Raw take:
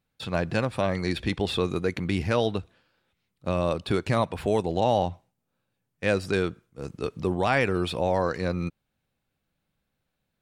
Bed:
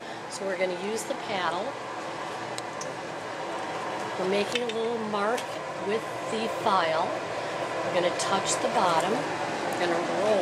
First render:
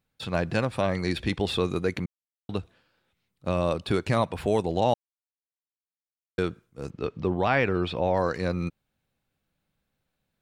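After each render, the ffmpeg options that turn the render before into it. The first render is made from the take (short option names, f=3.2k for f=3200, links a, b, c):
-filter_complex "[0:a]asettb=1/sr,asplit=3[a][b][c];[a]atrim=end=6.904[d];[b]atrim=start=6.9:end=8.17,asetpts=PTS-STARTPTS,afade=t=in:d=0.004:c=qsin,afade=t=out:st=1.266:d=0.004:c=qsin,lowpass=3.8k[e];[c]atrim=start=8.166[f];[d][e]acrossfade=d=0.004:c1=hsin:c2=qsin[g];[g][f]acrossfade=d=0.004:c1=qsin:c2=hsin,asplit=5[h][i][j][k][l];[h]atrim=end=2.06,asetpts=PTS-STARTPTS,afade=t=out:st=2.056:d=0.004:c=hsin[m];[i]atrim=start=2.06:end=2.49,asetpts=PTS-STARTPTS,volume=0[n];[j]atrim=start=2.49:end=4.94,asetpts=PTS-STARTPTS,afade=t=in:d=0.004:c=hsin,afade=t=out:st=2.446:d=0.004:c=hsin[o];[k]atrim=start=4.94:end=6.38,asetpts=PTS-STARTPTS,volume=0[p];[l]atrim=start=6.38,asetpts=PTS-STARTPTS,afade=t=in:d=0.004:c=hsin[q];[m][n][o][p][q]concat=n=5:v=0:a=1"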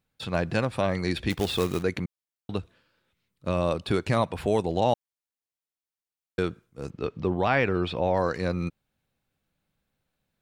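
-filter_complex "[0:a]asettb=1/sr,asplit=3[a][b][c];[a]atrim=end=1.304[d];[b]atrim=start=1.3:end=1.83,asetpts=PTS-STARTPTS,afade=t=in:d=0.004:c=qsin,afade=t=out:st=0.526:d=0.004:c=qsin,acrusher=bits=3:mode=log:mix=0:aa=0.000001[e];[c]atrim=start=1.826[f];[d][e]acrossfade=d=0.004:c1=hsin:c2=qsin[g];[g][f]acrossfade=d=0.004:c1=qsin:c2=hsin,asettb=1/sr,asplit=3[h][i][j];[h]atrim=end=2.594[k];[i]atrim=start=2.59:end=3.54,asetpts=PTS-STARTPTS,afade=t=in:d=0.004:c=qsin,afade=t=out:st=0.946:d=0.004:c=qsin,bandreject=f=760:w=5.5[l];[j]atrim=start=3.536[m];[k][l]acrossfade=d=0.004:c1=hsin:c2=qsin[n];[n][m]acrossfade=d=0.004:c1=qsin:c2=hsin"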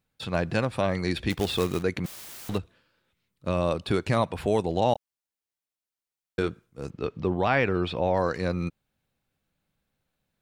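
-filter_complex "[0:a]asettb=1/sr,asplit=3[a][b][c];[a]atrim=end=2.044[d];[b]atrim=start=2.04:end=2.58,asetpts=PTS-STARTPTS,afade=t=in:d=0.004:c=qsin,afade=t=out:st=0.536:d=0.004:c=qsin,aeval=exprs='val(0)+0.5*0.0224*sgn(val(0))':c=same[e];[c]atrim=start=2.576[f];[d][e]acrossfade=d=0.004:c1=hsin:c2=qsin[g];[g][f]acrossfade=d=0.004:c1=qsin:c2=hsin,asettb=1/sr,asplit=3[h][i][j];[h]atrim=end=4.934[k];[i]atrim=start=4.93:end=6.49,asetpts=PTS-STARTPTS,afade=t=in:d=0.004:c=qsin,afade=t=out:st=1.556:d=0.004:c=qsin,asplit=2[l][m];[m]adelay=25,volume=-9.5dB[n];[l][n]amix=inputs=2:normalize=0,atrim=end_sample=68796[o];[j]atrim=start=6.486[p];[k][o]acrossfade=d=0.004:c1=hsin:c2=qsin[q];[q][p]acrossfade=d=0.004:c1=qsin:c2=hsin"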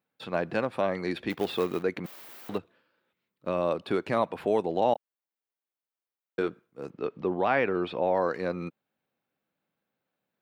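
-af "highpass=250,equalizer=f=7.8k:t=o:w=2.1:g=-13"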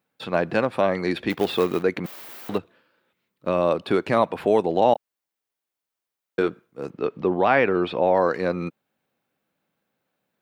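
-af "volume=6.5dB"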